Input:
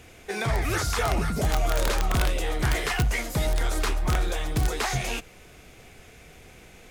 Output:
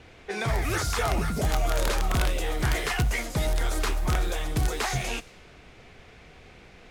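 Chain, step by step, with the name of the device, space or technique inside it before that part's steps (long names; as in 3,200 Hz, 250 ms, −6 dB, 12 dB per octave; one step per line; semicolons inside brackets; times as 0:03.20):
cassette deck with a dynamic noise filter (white noise bed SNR 24 dB; low-pass that shuts in the quiet parts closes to 2,600 Hz, open at −23 dBFS)
level −1 dB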